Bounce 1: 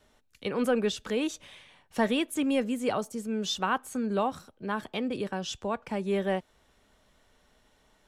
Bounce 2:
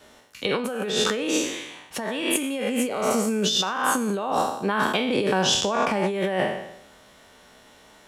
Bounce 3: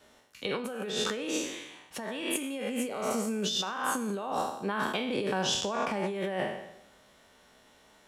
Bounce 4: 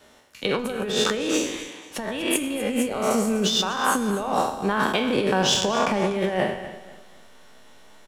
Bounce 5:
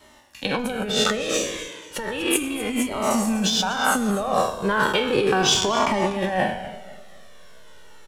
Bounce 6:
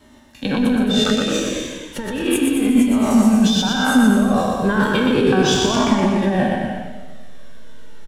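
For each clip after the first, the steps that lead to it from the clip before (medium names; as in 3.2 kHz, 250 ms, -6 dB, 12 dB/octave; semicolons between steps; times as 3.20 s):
spectral sustain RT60 0.80 s; compressor with a negative ratio -32 dBFS, ratio -1; high-pass 190 Hz 6 dB/octave; trim +8.5 dB
reverberation, pre-delay 3 ms, DRR 18.5 dB; trim -8 dB
feedback delay 245 ms, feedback 32%, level -12.5 dB; in parallel at -7 dB: hysteresis with a dead band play -27.5 dBFS; on the sum: trim +6 dB
Shepard-style flanger falling 0.34 Hz; trim +6.5 dB
bass shelf 320 Hz +10 dB; small resonant body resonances 250/1600/3600 Hz, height 9 dB; on a send: bouncing-ball echo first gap 120 ms, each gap 0.8×, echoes 5; on the sum: trim -3 dB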